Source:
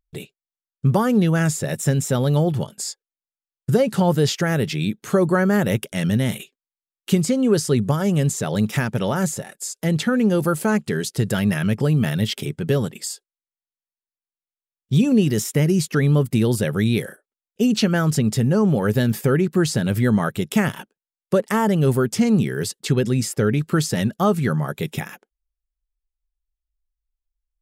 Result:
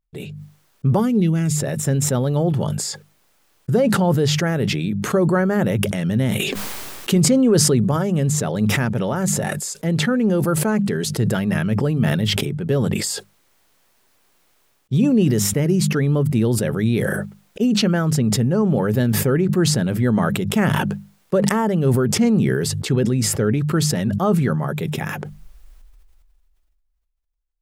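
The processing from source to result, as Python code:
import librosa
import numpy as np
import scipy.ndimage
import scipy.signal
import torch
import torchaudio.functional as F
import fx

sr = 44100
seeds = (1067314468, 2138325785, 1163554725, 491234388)

y = fx.spec_box(x, sr, start_s=0.99, length_s=0.57, low_hz=470.0, high_hz=1900.0, gain_db=-10)
y = fx.env_flatten(y, sr, amount_pct=70, at=(6.38, 7.72), fade=0.02)
y = fx.high_shelf(y, sr, hz=2200.0, db=-8.5)
y = fx.hum_notches(y, sr, base_hz=50, count=4)
y = fx.sustainer(y, sr, db_per_s=23.0)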